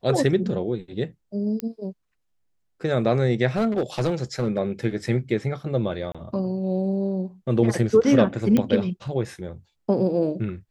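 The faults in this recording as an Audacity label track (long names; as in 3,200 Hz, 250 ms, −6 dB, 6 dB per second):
1.600000	1.600000	click −13 dBFS
3.560000	4.590000	clipping −17.5 dBFS
6.120000	6.150000	drop-out 26 ms
8.570000	8.570000	click −10 dBFS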